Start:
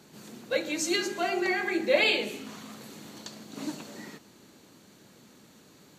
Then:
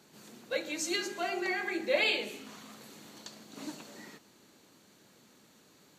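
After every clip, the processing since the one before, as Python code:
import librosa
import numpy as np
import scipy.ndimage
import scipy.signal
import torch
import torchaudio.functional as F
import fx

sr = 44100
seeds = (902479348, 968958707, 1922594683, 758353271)

y = fx.low_shelf(x, sr, hz=320.0, db=-5.5)
y = F.gain(torch.from_numpy(y), -4.0).numpy()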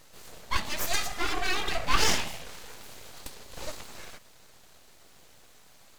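y = np.abs(x)
y = F.gain(torch.from_numpy(y), 7.5).numpy()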